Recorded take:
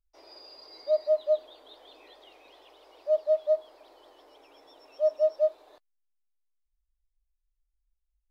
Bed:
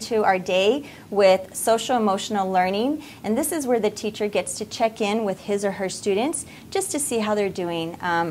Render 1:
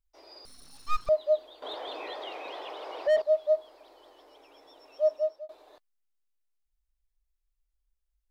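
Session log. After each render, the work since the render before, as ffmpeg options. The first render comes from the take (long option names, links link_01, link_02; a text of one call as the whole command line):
ffmpeg -i in.wav -filter_complex "[0:a]asettb=1/sr,asplit=3[link_01][link_02][link_03];[link_01]atrim=end=0.454[link_04];[link_02]atrim=start=0.45:end=1.09,asetpts=PTS-STARTPTS,afade=type=in:duration=0.004:curve=qsin,afade=type=out:start_time=0.636:duration=0.004:curve=qsin,aeval=exprs='abs(val(0))':channel_layout=same[link_05];[link_03]atrim=start=1.086[link_06];[link_04][link_05]acrossfade=duration=0.004:curve1=hsin:curve2=qsin[link_07];[link_07][link_06]acrossfade=duration=0.004:curve1=qsin:curve2=hsin,asettb=1/sr,asplit=3[link_08][link_09][link_10];[link_08]atrim=end=1.624[link_11];[link_09]atrim=start=1.62:end=3.22,asetpts=PTS-STARTPTS,afade=type=in:duration=0.004:curve=qsin,afade=type=out:start_time=1.596:duration=0.004:curve=qsin,asplit=2[link_12][link_13];[link_13]highpass=frequency=720:poles=1,volume=27dB,asoftclip=type=tanh:threshold=-16dB[link_14];[link_12][link_14]amix=inputs=2:normalize=0,lowpass=frequency=1300:poles=1,volume=-6dB[link_15];[link_10]atrim=start=3.216[link_16];[link_11][link_15]acrossfade=duration=0.004:curve1=hsin:curve2=qsin[link_17];[link_17][link_16]acrossfade=duration=0.004:curve1=qsin:curve2=hsin,asplit=2[link_18][link_19];[link_18]atrim=end=5.49,asetpts=PTS-STARTPTS,afade=type=out:start_time=5.08:duration=0.41[link_20];[link_19]atrim=start=5.49,asetpts=PTS-STARTPTS,afade=type=in:duration=0.004:curve=hsin[link_21];[link_20][link_21]concat=n=2:v=0:a=1" out.wav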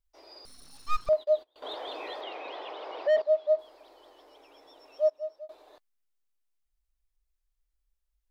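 ffmpeg -i in.wav -filter_complex "[0:a]asettb=1/sr,asplit=3[link_01][link_02][link_03];[link_01]atrim=end=1.134[link_04];[link_02]atrim=start=1.13:end=1.56,asetpts=PTS-STARTPTS,afade=type=in:duration=0.004:curve=qsin,afade=type=out:start_time=0.426:duration=0.004:curve=qsin,agate=range=-25dB:threshold=-45dB:ratio=16:release=100:detection=peak[link_05];[link_03]atrim=start=1.556[link_06];[link_04][link_05]acrossfade=duration=0.004:curve1=hsin:curve2=qsin[link_07];[link_07][link_06]acrossfade=duration=0.004:curve1=qsin:curve2=hsin,asettb=1/sr,asplit=3[link_08][link_09][link_10];[link_08]atrim=end=2.214[link_11];[link_09]atrim=start=2.21:end=3.59,asetpts=PTS-STARTPTS,afade=type=in:duration=0.004:curve=qsin,afade=type=out:start_time=1.376:duration=0.004:curve=qsin,highpass=110,lowpass=4700[link_12];[link_10]atrim=start=3.586[link_13];[link_11][link_12]acrossfade=duration=0.004:curve1=hsin:curve2=qsin[link_14];[link_14][link_13]acrossfade=duration=0.004:curve1=qsin:curve2=hsin,asplit=2[link_15][link_16];[link_15]atrim=end=5.1,asetpts=PTS-STARTPTS,afade=type=out:start_time=5.096:duration=0.004:curve=hsin:silence=0.112202[link_17];[link_16]atrim=start=5.1,asetpts=PTS-STARTPTS,afade=type=in:duration=0.4:silence=0.112202[link_18];[link_17][link_18]concat=n=2:v=0:a=1" out.wav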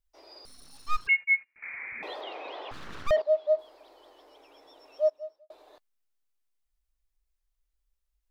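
ffmpeg -i in.wav -filter_complex "[0:a]asettb=1/sr,asplit=3[link_01][link_02][link_03];[link_01]atrim=end=1.074[link_04];[link_02]atrim=start=1.07:end=2.03,asetpts=PTS-STARTPTS,afade=type=in:duration=0.004:curve=qsin,afade=type=out:start_time=0.956:duration=0.004:curve=qsin,lowpass=frequency=2400:width_type=q:width=0.5098,lowpass=frequency=2400:width_type=q:width=0.6013,lowpass=frequency=2400:width_type=q:width=0.9,lowpass=frequency=2400:width_type=q:width=2.563,afreqshift=-2800[link_05];[link_03]atrim=start=2.026[link_06];[link_04][link_05]acrossfade=duration=0.004:curve1=hsin:curve2=qsin[link_07];[link_07][link_06]acrossfade=duration=0.004:curve1=qsin:curve2=hsin,asettb=1/sr,asplit=3[link_08][link_09][link_10];[link_08]atrim=end=2.714[link_11];[link_09]atrim=start=2.71:end=3.11,asetpts=PTS-STARTPTS,afade=type=in:duration=0.004:curve=qsin,afade=type=out:start_time=0.396:duration=0.004:curve=qsin,aeval=exprs='abs(val(0))':channel_layout=same[link_12];[link_10]atrim=start=3.106[link_13];[link_11][link_12]acrossfade=duration=0.004:curve1=hsin:curve2=qsin[link_14];[link_14][link_13]acrossfade=duration=0.004:curve1=qsin:curve2=hsin,asplit=2[link_15][link_16];[link_15]atrim=end=5.5,asetpts=PTS-STARTPTS,afade=type=out:start_time=5.1:duration=0.4[link_17];[link_16]atrim=start=5.5,asetpts=PTS-STARTPTS,afade=type=in:duration=0.004:curve=hsin[link_18];[link_17][link_18]concat=n=2:v=0:a=1" out.wav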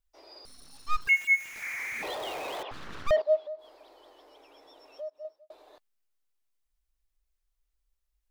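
ffmpeg -i in.wav -filter_complex "[0:a]asettb=1/sr,asplit=3[link_01][link_02][link_03];[link_01]atrim=end=0.974[link_04];[link_02]atrim=start=0.97:end=2.63,asetpts=PTS-STARTPTS,afade=type=in:duration=0.004:curve=qsin,afade=type=out:start_time=1.656:duration=0.004:curve=qsin,aeval=exprs='val(0)+0.5*0.0133*sgn(val(0))':channel_layout=same[link_05];[link_03]atrim=start=2.626[link_06];[link_04][link_05]acrossfade=duration=0.004:curve1=hsin:curve2=qsin[link_07];[link_07][link_06]acrossfade=duration=0.004:curve1=qsin:curve2=hsin,asettb=1/sr,asplit=3[link_08][link_09][link_10];[link_08]atrim=end=3.464[link_11];[link_09]atrim=start=3.46:end=5.25,asetpts=PTS-STARTPTS,afade=type=in:duration=0.004:curve=qsin,afade=type=out:start_time=1.786:duration=0.004:curve=qsin,acompressor=threshold=-40dB:ratio=3:attack=3.2:release=140:knee=1:detection=peak[link_12];[link_10]atrim=start=5.246[link_13];[link_11][link_12]acrossfade=duration=0.004:curve1=hsin:curve2=qsin[link_14];[link_14][link_13]acrossfade=duration=0.004:curve1=qsin:curve2=hsin" out.wav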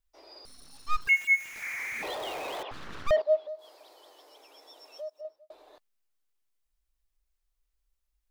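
ffmpeg -i in.wav -filter_complex "[0:a]asettb=1/sr,asplit=3[link_01][link_02][link_03];[link_01]atrim=end=3.484[link_04];[link_02]atrim=start=3.48:end=5.21,asetpts=PTS-STARTPTS,afade=type=in:duration=0.004:curve=qsin,afade=type=out:start_time=1.726:duration=0.004:curve=qsin,bass=frequency=250:gain=-13,treble=frequency=4000:gain=10[link_05];[link_03]atrim=start=5.206[link_06];[link_04][link_05]acrossfade=duration=0.004:curve1=hsin:curve2=qsin[link_07];[link_07][link_06]acrossfade=duration=0.004:curve1=qsin:curve2=hsin" out.wav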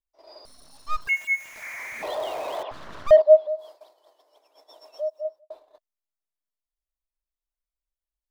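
ffmpeg -i in.wav -af "agate=range=-14dB:threshold=-53dB:ratio=16:detection=peak,equalizer=frequency=630:width_type=o:width=0.33:gain=11,equalizer=frequency=1000:width_type=o:width=0.33:gain=6,equalizer=frequency=2500:width_type=o:width=0.33:gain=-3" out.wav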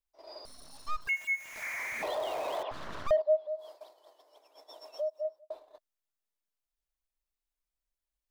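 ffmpeg -i in.wav -af "acompressor=threshold=-34dB:ratio=2" out.wav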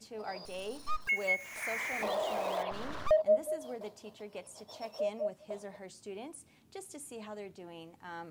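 ffmpeg -i in.wav -i bed.wav -filter_complex "[1:a]volume=-22dB[link_01];[0:a][link_01]amix=inputs=2:normalize=0" out.wav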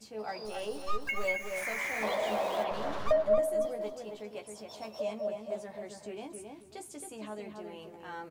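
ffmpeg -i in.wav -filter_complex "[0:a]asplit=2[link_01][link_02];[link_02]adelay=14,volume=-5dB[link_03];[link_01][link_03]amix=inputs=2:normalize=0,asplit=2[link_04][link_05];[link_05]adelay=270,lowpass=frequency=1900:poles=1,volume=-4dB,asplit=2[link_06][link_07];[link_07]adelay=270,lowpass=frequency=1900:poles=1,volume=0.3,asplit=2[link_08][link_09];[link_09]adelay=270,lowpass=frequency=1900:poles=1,volume=0.3,asplit=2[link_10][link_11];[link_11]adelay=270,lowpass=frequency=1900:poles=1,volume=0.3[link_12];[link_06][link_08][link_10][link_12]amix=inputs=4:normalize=0[link_13];[link_04][link_13]amix=inputs=2:normalize=0" out.wav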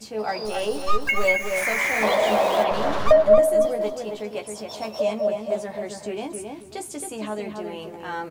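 ffmpeg -i in.wav -af "volume=11.5dB" out.wav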